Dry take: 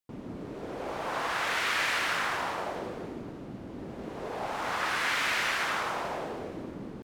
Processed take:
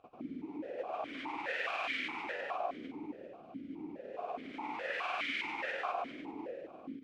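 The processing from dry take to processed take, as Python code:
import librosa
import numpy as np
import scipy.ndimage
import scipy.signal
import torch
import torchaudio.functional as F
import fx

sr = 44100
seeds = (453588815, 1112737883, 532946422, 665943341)

y = fx.granulator(x, sr, seeds[0], grain_ms=100.0, per_s=20.0, spray_ms=100.0, spread_st=0)
y = fx.dmg_noise_colour(y, sr, seeds[1], colour='brown', level_db=-52.0)
y = fx.vowel_held(y, sr, hz=4.8)
y = y * 10.0 ** (6.0 / 20.0)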